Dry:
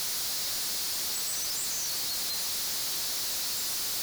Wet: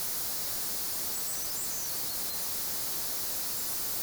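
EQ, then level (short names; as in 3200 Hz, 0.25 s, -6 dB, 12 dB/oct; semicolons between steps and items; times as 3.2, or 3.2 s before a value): bell 3700 Hz -10 dB 2.2 oct; +2.0 dB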